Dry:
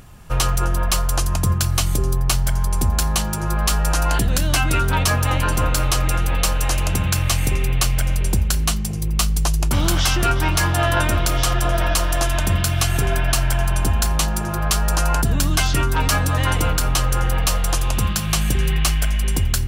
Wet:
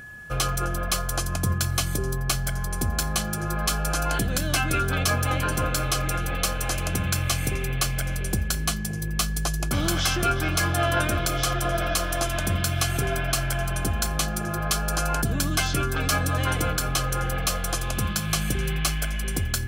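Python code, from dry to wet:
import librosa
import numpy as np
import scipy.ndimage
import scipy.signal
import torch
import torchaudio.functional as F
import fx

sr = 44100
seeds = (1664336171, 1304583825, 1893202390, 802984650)

y = x + 10.0 ** (-36.0 / 20.0) * np.sin(2.0 * np.pi * 1700.0 * np.arange(len(x)) / sr)
y = fx.notch_comb(y, sr, f0_hz=930.0)
y = F.gain(torch.from_numpy(y), -3.0).numpy()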